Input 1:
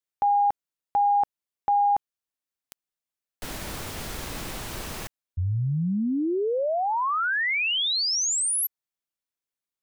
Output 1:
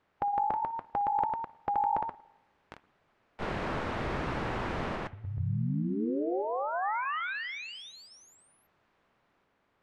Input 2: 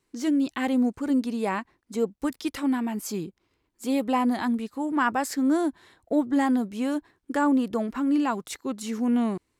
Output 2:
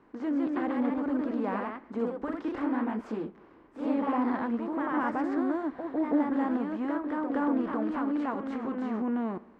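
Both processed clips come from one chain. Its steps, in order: per-bin compression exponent 0.6; LPF 1600 Hz 12 dB/oct; spring tank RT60 1 s, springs 59 ms, chirp 70 ms, DRR 19 dB; echoes that change speed 0.171 s, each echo +1 st, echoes 2; flange 0.7 Hz, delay 0.7 ms, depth 5.3 ms, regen -77%; gain -4.5 dB

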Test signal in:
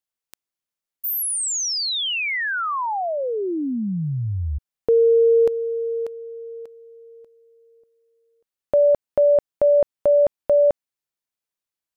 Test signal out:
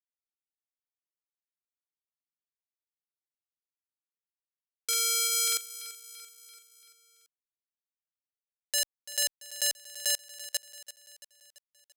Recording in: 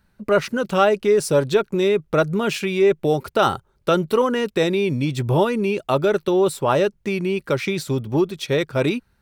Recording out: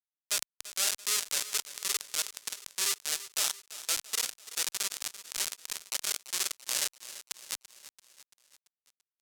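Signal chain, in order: ending faded out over 1.69 s; flutter echo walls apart 8.2 m, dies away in 0.47 s; Schmitt trigger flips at -12.5 dBFS; band-pass 7100 Hz, Q 0.87; tilt +2.5 dB/oct; feedback echo 0.338 s, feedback 54%, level -15 dB

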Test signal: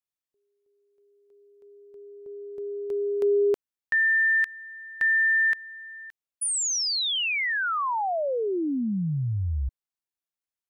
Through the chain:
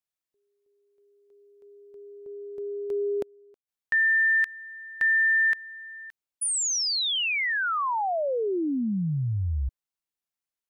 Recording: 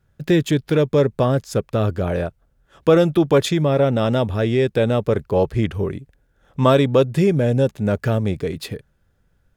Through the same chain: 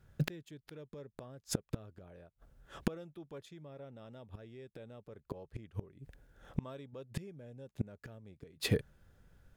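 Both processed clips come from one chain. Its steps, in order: flipped gate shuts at -18 dBFS, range -33 dB

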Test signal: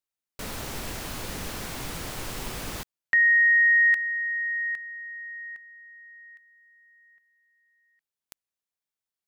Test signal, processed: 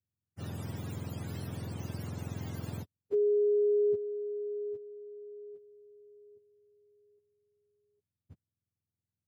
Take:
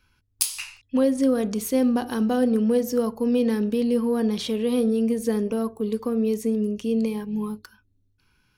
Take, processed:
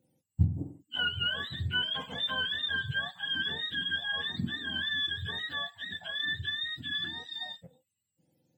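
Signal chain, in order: spectrum mirrored in octaves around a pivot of 880 Hz; gain -7.5 dB

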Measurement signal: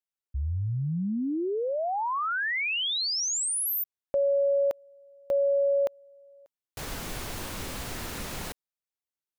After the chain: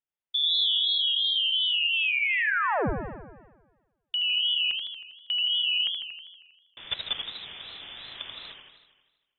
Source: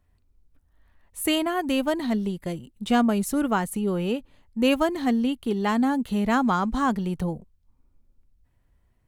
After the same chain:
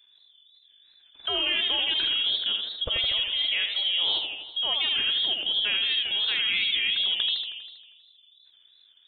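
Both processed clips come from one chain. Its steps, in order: level quantiser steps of 17 dB; inverted band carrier 3500 Hz; warbling echo 80 ms, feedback 65%, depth 175 cents, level -6 dB; gain +7 dB

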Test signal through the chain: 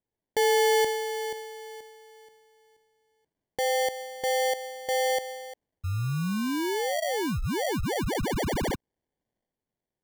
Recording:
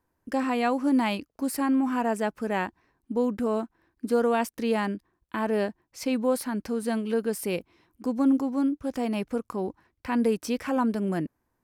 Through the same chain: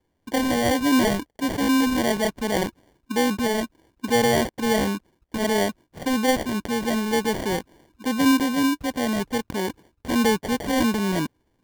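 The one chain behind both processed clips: sample-and-hold 34×; transient shaper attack -1 dB, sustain +4 dB; gain +4 dB

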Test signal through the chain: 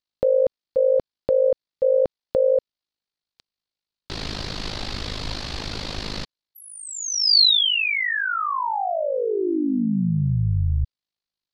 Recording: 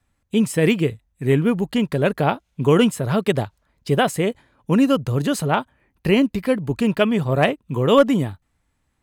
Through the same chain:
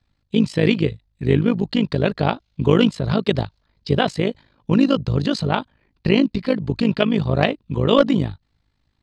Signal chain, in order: synth low-pass 4400 Hz, resonance Q 3.8; low shelf 390 Hz +5.5 dB; AM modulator 52 Hz, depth 65%

